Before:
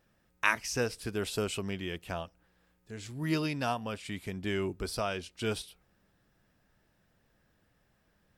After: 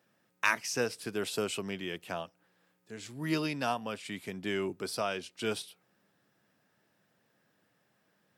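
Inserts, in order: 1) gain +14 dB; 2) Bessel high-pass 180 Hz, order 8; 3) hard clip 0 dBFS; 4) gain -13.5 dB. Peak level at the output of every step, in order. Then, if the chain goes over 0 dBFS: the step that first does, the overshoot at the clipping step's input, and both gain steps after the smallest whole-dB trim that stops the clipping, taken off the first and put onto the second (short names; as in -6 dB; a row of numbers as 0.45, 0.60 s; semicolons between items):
+5.0, +4.5, 0.0, -13.5 dBFS; step 1, 4.5 dB; step 1 +9 dB, step 4 -8.5 dB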